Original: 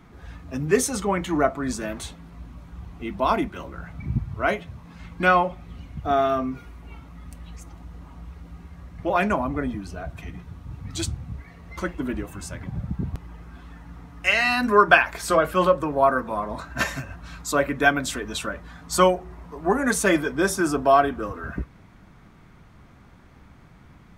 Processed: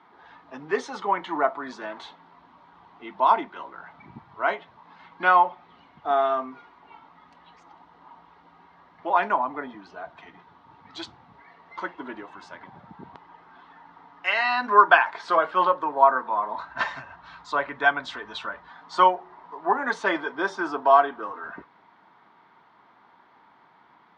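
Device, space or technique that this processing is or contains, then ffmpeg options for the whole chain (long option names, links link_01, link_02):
phone earpiece: -filter_complex "[0:a]asplit=3[link_01][link_02][link_03];[link_01]afade=type=out:start_time=16.56:duration=0.02[link_04];[link_02]asubboost=boost=5:cutoff=120,afade=type=in:start_time=16.56:duration=0.02,afade=type=out:start_time=18.68:duration=0.02[link_05];[link_03]afade=type=in:start_time=18.68:duration=0.02[link_06];[link_04][link_05][link_06]amix=inputs=3:normalize=0,highpass=470,equalizer=frequency=540:width_type=q:width=4:gain=-5,equalizer=frequency=920:width_type=q:width=4:gain=10,equalizer=frequency=2500:width_type=q:width=4:gain=-7,lowpass=frequency=4000:width=0.5412,lowpass=frequency=4000:width=1.3066,volume=-1dB"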